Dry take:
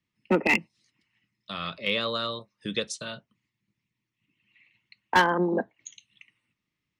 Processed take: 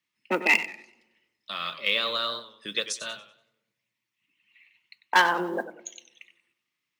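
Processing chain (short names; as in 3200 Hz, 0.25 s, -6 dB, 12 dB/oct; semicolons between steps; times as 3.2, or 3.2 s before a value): HPF 1000 Hz 6 dB/oct; modulation noise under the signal 33 dB; on a send at -21 dB: reverb RT60 1.1 s, pre-delay 3 ms; on the sum: warbling echo 95 ms, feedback 32%, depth 123 cents, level -13 dB; gain +3.5 dB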